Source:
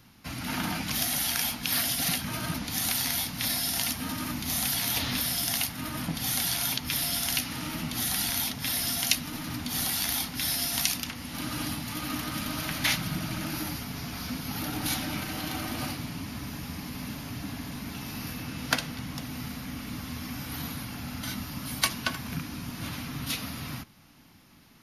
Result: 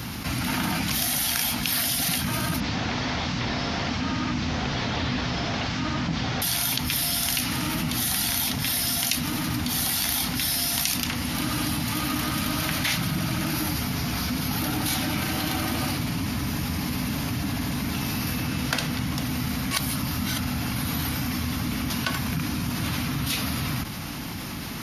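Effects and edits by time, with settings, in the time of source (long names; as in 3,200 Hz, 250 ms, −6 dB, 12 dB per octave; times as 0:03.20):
0:02.60–0:06.42: linear delta modulator 32 kbit/s, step −40.5 dBFS
0:19.71–0:21.90: reverse
whole clip: high-pass filter 51 Hz; low-shelf EQ 68 Hz +7 dB; envelope flattener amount 70%; level −2 dB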